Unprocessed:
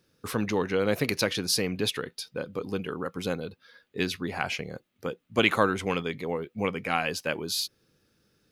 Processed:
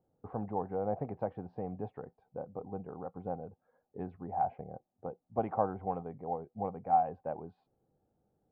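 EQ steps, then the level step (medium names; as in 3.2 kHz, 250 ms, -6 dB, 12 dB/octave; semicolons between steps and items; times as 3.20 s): bass shelf 200 Hz +5 dB; dynamic bell 340 Hz, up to -5 dB, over -39 dBFS, Q 1.4; four-pole ladder low-pass 810 Hz, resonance 80%; +1.5 dB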